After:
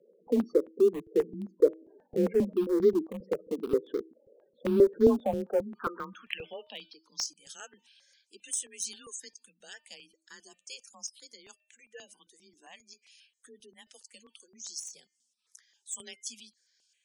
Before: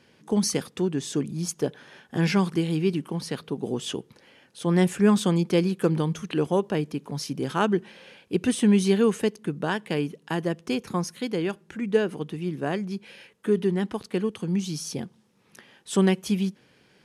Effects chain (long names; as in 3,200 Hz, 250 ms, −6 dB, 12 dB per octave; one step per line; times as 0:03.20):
hum removal 296.4 Hz, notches 17
band-pass filter sweep 400 Hz → 7,100 Hz, 0:04.96–0:07.32
gate on every frequency bin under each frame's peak −15 dB strong
frequency shifter +27 Hz
in parallel at −12 dB: centre clipping without the shift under −30.5 dBFS
on the sum: step-sequenced phaser 7.5 Hz 280–2,700 Hz
level +6 dB